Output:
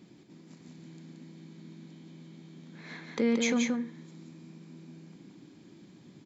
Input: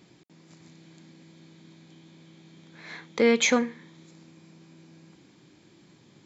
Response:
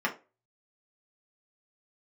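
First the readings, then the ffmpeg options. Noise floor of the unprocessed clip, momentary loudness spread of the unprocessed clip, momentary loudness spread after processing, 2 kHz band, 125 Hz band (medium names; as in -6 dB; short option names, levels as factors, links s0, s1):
-58 dBFS, 22 LU, 23 LU, -8.0 dB, +2.0 dB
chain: -af "equalizer=f=230:t=o:w=1.3:g=10,alimiter=limit=0.2:level=0:latency=1:release=344,aecho=1:1:144|177:0.141|0.631,volume=0.596"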